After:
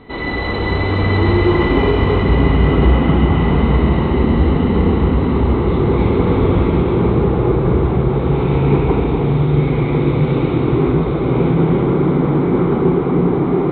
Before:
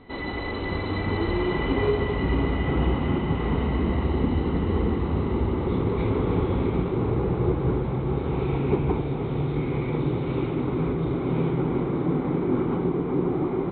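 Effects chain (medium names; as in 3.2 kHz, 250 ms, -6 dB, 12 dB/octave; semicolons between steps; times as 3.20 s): in parallel at -10.5 dB: saturation -24.5 dBFS, distortion -11 dB; on the sum: gated-style reverb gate 430 ms flat, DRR -0.5 dB; trim +5.5 dB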